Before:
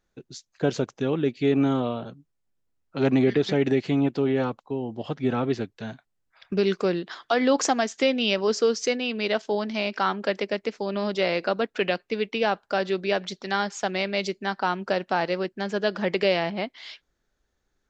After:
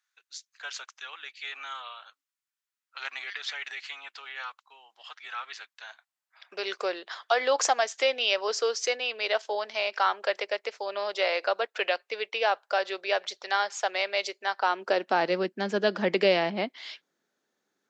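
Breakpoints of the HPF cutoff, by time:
HPF 24 dB/oct
5.51 s 1200 Hz
6.81 s 520 Hz
14.54 s 520 Hz
15.29 s 190 Hz

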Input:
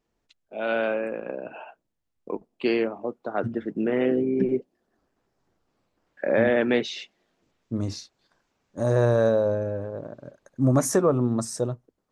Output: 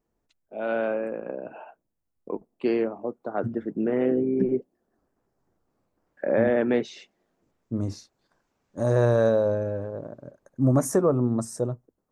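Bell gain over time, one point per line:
bell 3400 Hz 1.9 oct
7.95 s -10.5 dB
9.05 s -1 dB
9.78 s -1 dB
10.21 s -11.5 dB

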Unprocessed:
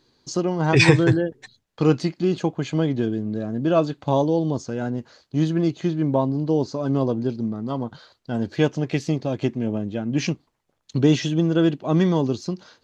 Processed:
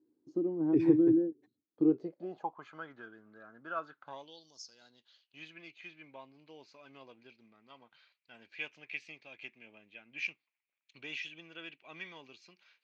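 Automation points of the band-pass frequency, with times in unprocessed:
band-pass, Q 7.8
1.82 s 310 Hz
2.75 s 1400 Hz
4.05 s 1400 Hz
4.51 s 5900 Hz
5.45 s 2400 Hz

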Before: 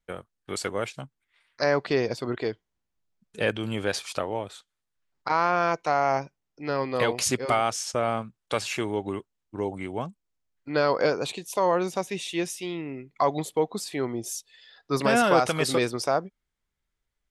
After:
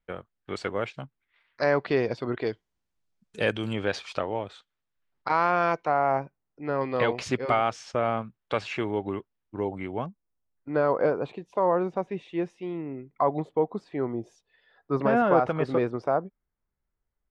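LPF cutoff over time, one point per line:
3200 Hz
from 2.47 s 8300 Hz
from 3.73 s 3700 Hz
from 5.85 s 1700 Hz
from 6.81 s 2900 Hz
from 10.06 s 1300 Hz

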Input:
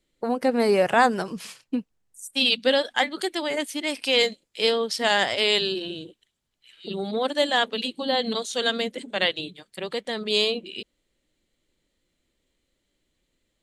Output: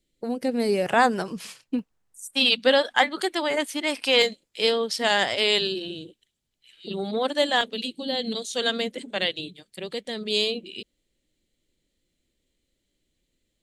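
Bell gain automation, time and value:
bell 1100 Hz 1.6 oct
-13 dB
from 0.86 s -1 dB
from 1.79 s +5 dB
from 4.22 s -1 dB
from 5.67 s -7 dB
from 6.91 s 0 dB
from 7.61 s -12 dB
from 8.55 s -2 dB
from 9.21 s -9 dB

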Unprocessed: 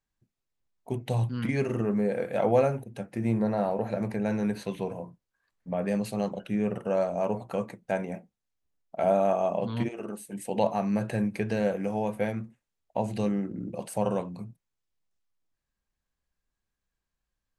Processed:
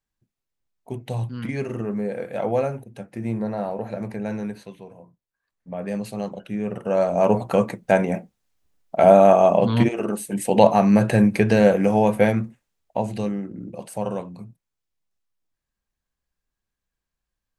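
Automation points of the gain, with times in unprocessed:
4.38 s 0 dB
4.84 s -10 dB
5.95 s +0.5 dB
6.64 s +0.5 dB
7.32 s +11.5 dB
12.31 s +11.5 dB
13.4 s +0.5 dB

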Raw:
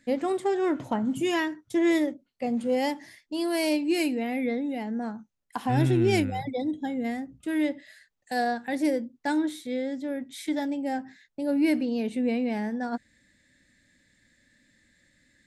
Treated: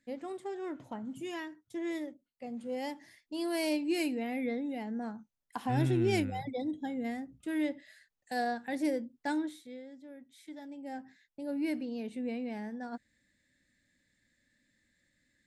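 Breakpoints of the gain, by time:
2.48 s -13.5 dB
3.47 s -6 dB
9.33 s -6 dB
9.85 s -18 dB
10.6 s -18 dB
11.01 s -10 dB

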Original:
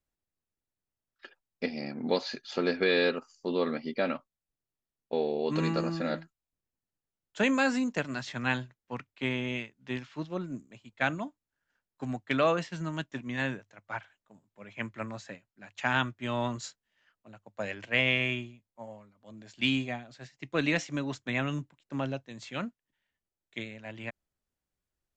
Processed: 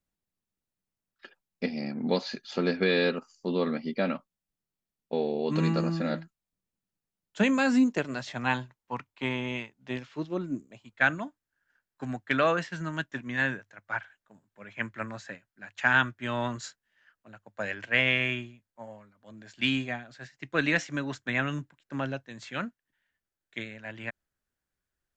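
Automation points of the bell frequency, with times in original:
bell +8.5 dB 0.53 oct
7.63 s 190 Hz
8.51 s 950 Hz
9.64 s 950 Hz
10.5 s 250 Hz
10.97 s 1600 Hz

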